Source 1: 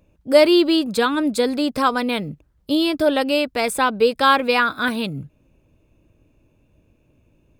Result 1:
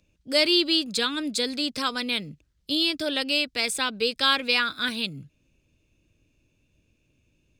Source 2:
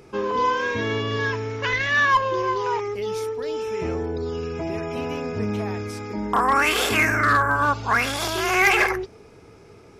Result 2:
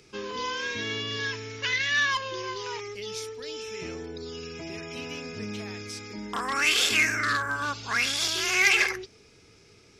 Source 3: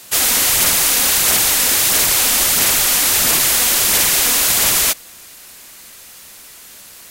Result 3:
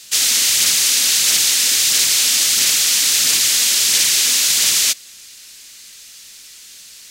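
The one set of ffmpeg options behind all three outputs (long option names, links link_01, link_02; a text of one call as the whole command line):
ffmpeg -i in.wav -filter_complex "[0:a]equalizer=frequency=870:width=0.85:gain=-8.5,acrossover=split=100|6500[link_01][link_02][link_03];[link_01]acompressor=threshold=-48dB:ratio=6[link_04];[link_02]crystalizer=i=7.5:c=0[link_05];[link_04][link_05][link_03]amix=inputs=3:normalize=0,volume=-8.5dB" out.wav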